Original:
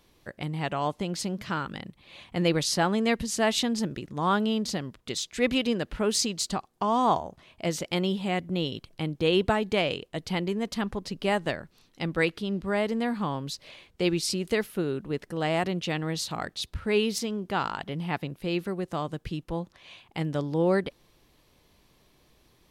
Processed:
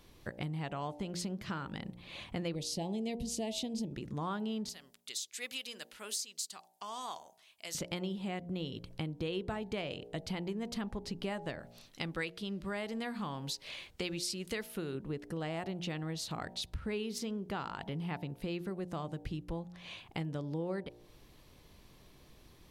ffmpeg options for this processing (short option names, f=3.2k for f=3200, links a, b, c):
-filter_complex "[0:a]asettb=1/sr,asplit=3[a][b][c];[a]atrim=end=2.554[d];[b]atrim=start=2.55:end=3.93,asetpts=PTS-STARTPTS,afade=t=in:d=0.004:c=qsin,afade=t=out:st=1.376:d=0.004:c=qsin,asuperstop=centerf=1400:order=4:qfactor=0.81[e];[c]atrim=start=3.926[f];[d][e]acrossfade=d=0.004:c1=hsin:c2=qsin[g];[g][f]acrossfade=d=0.004:c1=qsin:c2=hsin,asettb=1/sr,asplit=3[h][i][j];[h]atrim=end=4.694[k];[i]atrim=start=4.69:end=7.75,asetpts=PTS-STARTPTS,afade=t=in:d=0.004:c=qsin,afade=t=out:st=3.056:d=0.004:c=qsin,aderivative[l];[j]atrim=start=7.746[m];[k][l]acrossfade=d=0.004:c1=hsin:c2=qsin[n];[n][m]acrossfade=d=0.004:c1=qsin:c2=hsin,asettb=1/sr,asplit=3[o][p][q];[o]atrim=end=11.594[r];[p]atrim=start=11.59:end=14.95,asetpts=PTS-STARTPTS,afade=t=in:d=0.004:c=qsin,afade=t=out:st=3.356:d=0.004:c=qsin,tiltshelf=f=1.1k:g=-4.5[s];[q]atrim=start=14.946[t];[r][s]acrossfade=d=0.004:c1=hsin:c2=qsin[u];[u][t]acrossfade=d=0.004:c1=qsin:c2=hsin,lowshelf=f=250:g=5,bandreject=f=58.92:t=h:w=4,bandreject=f=117.84:t=h:w=4,bandreject=f=176.76:t=h:w=4,bandreject=f=235.68:t=h:w=4,bandreject=f=294.6:t=h:w=4,bandreject=f=353.52:t=h:w=4,bandreject=f=412.44:t=h:w=4,bandreject=f=471.36:t=h:w=4,bandreject=f=530.28:t=h:w=4,bandreject=f=589.2:t=h:w=4,bandreject=f=648.12:t=h:w=4,bandreject=f=707.04:t=h:w=4,bandreject=f=765.96:t=h:w=4,bandreject=f=824.88:t=h:w=4,bandreject=f=883.8:t=h:w=4,bandreject=f=942.72:t=h:w=4,acompressor=threshold=-38dB:ratio=4,volume=1dB"